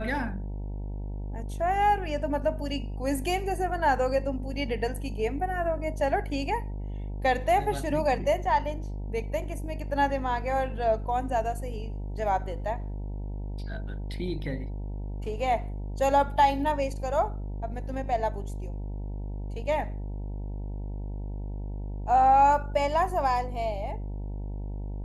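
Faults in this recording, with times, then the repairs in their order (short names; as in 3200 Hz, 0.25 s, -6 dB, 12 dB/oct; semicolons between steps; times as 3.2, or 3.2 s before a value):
buzz 50 Hz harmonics 19 -34 dBFS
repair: de-hum 50 Hz, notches 19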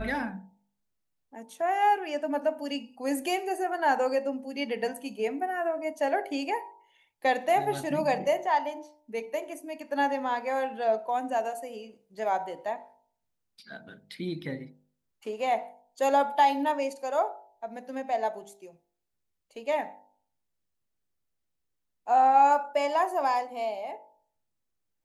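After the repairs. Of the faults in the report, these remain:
none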